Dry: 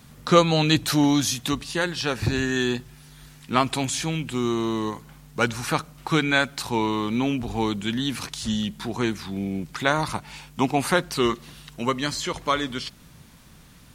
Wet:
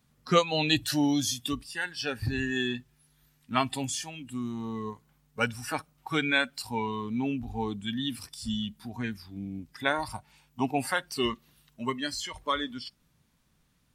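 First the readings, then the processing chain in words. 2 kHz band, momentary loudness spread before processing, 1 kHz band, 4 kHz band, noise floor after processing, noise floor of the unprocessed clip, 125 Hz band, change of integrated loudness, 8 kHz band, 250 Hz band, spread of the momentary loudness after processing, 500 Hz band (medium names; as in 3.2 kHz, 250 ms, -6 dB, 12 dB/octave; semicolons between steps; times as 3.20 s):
-4.5 dB, 10 LU, -6.5 dB, -4.5 dB, -69 dBFS, -50 dBFS, -8.5 dB, -6.0 dB, -6.0 dB, -7.0 dB, 13 LU, -7.5 dB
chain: spectral noise reduction 14 dB; dynamic bell 2.8 kHz, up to +5 dB, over -42 dBFS, Q 1.6; trim -5.5 dB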